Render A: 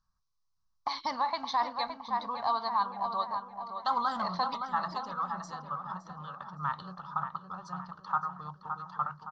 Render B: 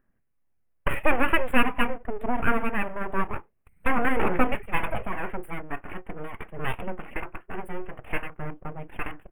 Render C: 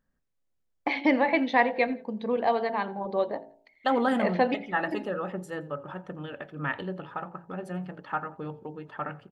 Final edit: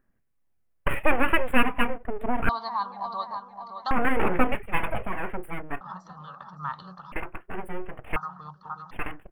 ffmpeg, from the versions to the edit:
-filter_complex "[0:a]asplit=3[a][b][c];[1:a]asplit=4[d][e][f][g];[d]atrim=end=2.492[h];[a]atrim=start=2.488:end=3.912[i];[e]atrim=start=3.908:end=5.812[j];[b]atrim=start=5.808:end=7.122[k];[f]atrim=start=7.118:end=8.162[l];[c]atrim=start=8.158:end=8.912[m];[g]atrim=start=8.908[n];[h][i]acrossfade=d=0.004:c1=hsin:c2=hsin[o];[o][j]acrossfade=d=0.004:c1=hsin:c2=hsin[p];[p][k]acrossfade=d=0.004:c1=hsin:c2=hsin[q];[q][l]acrossfade=d=0.004:c1=hsin:c2=hsin[r];[r][m]acrossfade=d=0.004:c1=hsin:c2=hsin[s];[s][n]acrossfade=d=0.004:c1=hsin:c2=hsin"

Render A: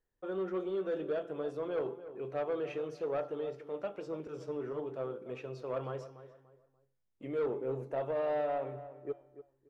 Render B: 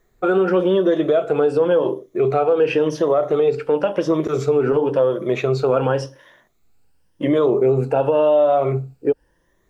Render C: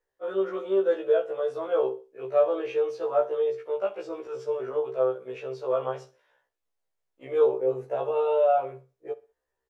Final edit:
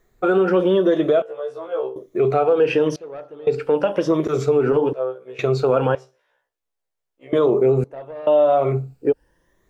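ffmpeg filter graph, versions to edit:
-filter_complex "[2:a]asplit=3[a][b][c];[0:a]asplit=2[d][e];[1:a]asplit=6[f][g][h][i][j][k];[f]atrim=end=1.222[l];[a]atrim=start=1.218:end=1.962[m];[g]atrim=start=1.958:end=2.962[n];[d]atrim=start=2.958:end=3.472[o];[h]atrim=start=3.468:end=4.932[p];[b]atrim=start=4.928:end=5.392[q];[i]atrim=start=5.388:end=5.952[r];[c]atrim=start=5.948:end=7.332[s];[j]atrim=start=7.328:end=7.842[t];[e]atrim=start=7.838:end=8.272[u];[k]atrim=start=8.268[v];[l][m]acrossfade=d=0.004:c1=hsin:c2=hsin[w];[w][n]acrossfade=d=0.004:c1=hsin:c2=hsin[x];[x][o]acrossfade=d=0.004:c1=hsin:c2=hsin[y];[y][p]acrossfade=d=0.004:c1=hsin:c2=hsin[z];[z][q]acrossfade=d=0.004:c1=hsin:c2=hsin[aa];[aa][r]acrossfade=d=0.004:c1=hsin:c2=hsin[ab];[ab][s]acrossfade=d=0.004:c1=hsin:c2=hsin[ac];[ac][t]acrossfade=d=0.004:c1=hsin:c2=hsin[ad];[ad][u]acrossfade=d=0.004:c1=hsin:c2=hsin[ae];[ae][v]acrossfade=d=0.004:c1=hsin:c2=hsin"

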